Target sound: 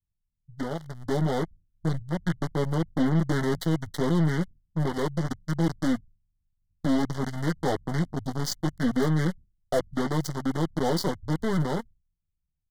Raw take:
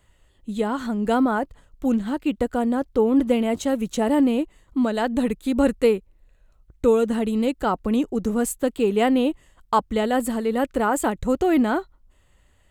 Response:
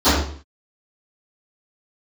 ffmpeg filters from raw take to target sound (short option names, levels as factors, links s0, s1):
-filter_complex "[0:a]aeval=exprs='val(0)+0.5*0.0188*sgn(val(0))':c=same,agate=range=0.0224:threshold=0.0398:ratio=3:detection=peak,lowshelf=f=160:g=-11.5,aeval=exprs='0.473*(cos(1*acos(clip(val(0)/0.473,-1,1)))-cos(1*PI/2))+0.0473*(cos(2*acos(clip(val(0)/0.473,-1,1)))-cos(2*PI/2))+0.0473*(cos(4*acos(clip(val(0)/0.473,-1,1)))-cos(4*PI/2))+0.00335*(cos(6*acos(clip(val(0)/0.473,-1,1)))-cos(6*PI/2))+0.0266*(cos(8*acos(clip(val(0)/0.473,-1,1)))-cos(8*PI/2))':c=same,aecho=1:1:7.2:0.57,asetrate=26222,aresample=44100,atempo=1.68179,acrossover=split=150[s0][s1];[s1]acrusher=bits=3:mix=0:aa=0.5[s2];[s0][s2]amix=inputs=2:normalize=0,dynaudnorm=f=240:g=11:m=3.76,asoftclip=type=tanh:threshold=0.376,asuperstop=centerf=2500:order=20:qfactor=3.2,volume=0.376"